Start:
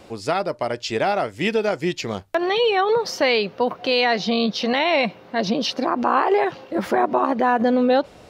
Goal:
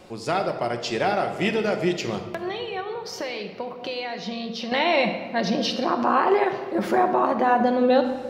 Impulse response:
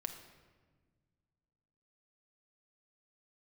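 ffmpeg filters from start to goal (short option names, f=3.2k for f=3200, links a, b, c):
-filter_complex "[0:a]asettb=1/sr,asplit=3[a][b][c];[a]atrim=end=2.294[d];[b]atrim=start=2.29:end=4.72,asetpts=PTS-STARTPTS,afade=t=in:d=0.004:c=qsin,afade=t=out:st=2.426:d=0.004:c=qsin,acompressor=threshold=-27dB:ratio=6[e];[c]atrim=start=4.716[f];[d][e]acrossfade=d=0.004:c1=hsin:c2=qsin[g];[g][f]acrossfade=d=0.004:c1=qsin:c2=hsin[h];[1:a]atrim=start_sample=2205[i];[h][i]afir=irnorm=-1:irlink=0"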